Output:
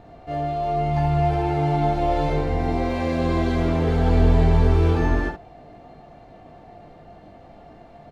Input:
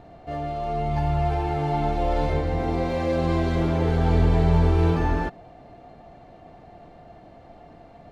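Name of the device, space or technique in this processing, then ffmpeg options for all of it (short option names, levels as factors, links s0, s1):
slapback doubling: -filter_complex "[0:a]asplit=3[s0][s1][s2];[s1]adelay=20,volume=0.531[s3];[s2]adelay=69,volume=0.447[s4];[s0][s3][s4]amix=inputs=3:normalize=0"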